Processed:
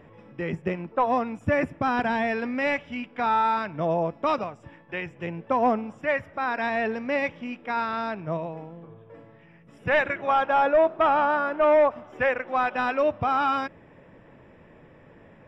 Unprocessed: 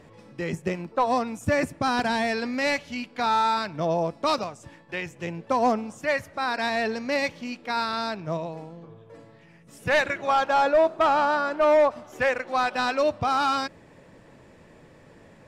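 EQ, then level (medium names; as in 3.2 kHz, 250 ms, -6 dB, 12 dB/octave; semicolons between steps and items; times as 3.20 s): Savitzky-Golay filter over 25 samples; 0.0 dB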